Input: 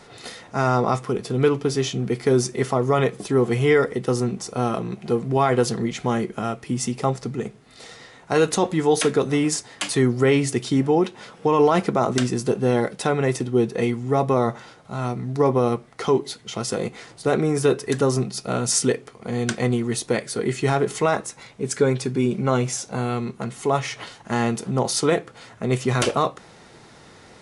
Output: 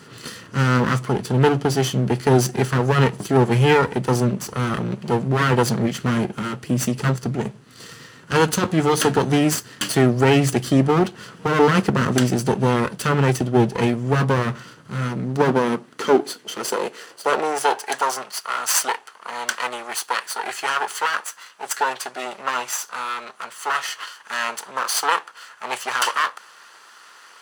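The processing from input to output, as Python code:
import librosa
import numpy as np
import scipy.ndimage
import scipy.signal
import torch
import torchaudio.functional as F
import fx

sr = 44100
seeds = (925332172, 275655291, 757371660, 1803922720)

y = fx.lower_of_two(x, sr, delay_ms=0.66)
y = fx.filter_sweep_highpass(y, sr, from_hz=120.0, to_hz=950.0, start_s=14.77, end_s=18.17, q=1.5)
y = F.gain(torch.from_numpy(y), 3.5).numpy()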